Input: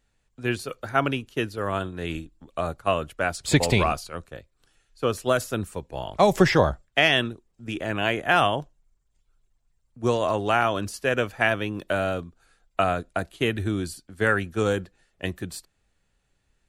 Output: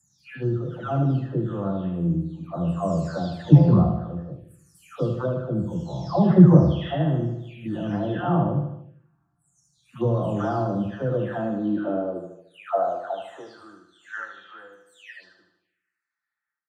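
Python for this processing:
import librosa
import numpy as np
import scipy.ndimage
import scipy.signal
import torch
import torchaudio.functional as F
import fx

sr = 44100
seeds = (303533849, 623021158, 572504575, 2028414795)

p1 = fx.spec_delay(x, sr, highs='early', ms=652)
p2 = scipy.signal.sosfilt(scipy.signal.butter(2, 55.0, 'highpass', fs=sr, output='sos'), p1)
p3 = fx.riaa(p2, sr, side='playback')
p4 = p3 + fx.echo_feedback(p3, sr, ms=76, feedback_pct=54, wet_db=-7.0, dry=0)
p5 = fx.rev_double_slope(p4, sr, seeds[0], early_s=0.53, late_s=2.1, knee_db=-24, drr_db=9.5)
p6 = fx.env_phaser(p5, sr, low_hz=470.0, high_hz=2300.0, full_db=-25.5)
p7 = fx.filter_sweep_highpass(p6, sr, from_hz=150.0, to_hz=1800.0, start_s=11.11, end_s=14.29, q=2.2)
y = p7 * librosa.db_to_amplitude(-4.5)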